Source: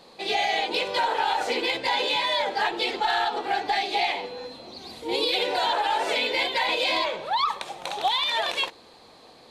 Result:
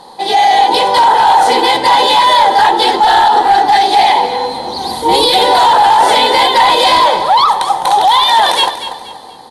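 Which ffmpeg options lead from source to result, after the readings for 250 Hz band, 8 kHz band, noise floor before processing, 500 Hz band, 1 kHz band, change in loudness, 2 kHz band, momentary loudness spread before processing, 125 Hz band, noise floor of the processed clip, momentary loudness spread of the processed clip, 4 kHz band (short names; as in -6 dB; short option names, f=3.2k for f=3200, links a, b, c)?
+14.5 dB, +18.0 dB, -51 dBFS, +13.5 dB, +19.5 dB, +16.0 dB, +10.5 dB, 8 LU, n/a, -32 dBFS, 7 LU, +13.5 dB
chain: -filter_complex "[0:a]superequalizer=9b=3.55:12b=0.355:16b=2.51,dynaudnorm=f=100:g=13:m=11.5dB,apsyclip=15dB,aeval=exprs='1.06*(cos(1*acos(clip(val(0)/1.06,-1,1)))-cos(1*PI/2))+0.0168*(cos(3*acos(clip(val(0)/1.06,-1,1)))-cos(3*PI/2))':c=same,asplit=2[a][b];[b]aecho=0:1:239|478|717|956:0.266|0.0905|0.0308|0.0105[c];[a][c]amix=inputs=2:normalize=0,volume=-4dB"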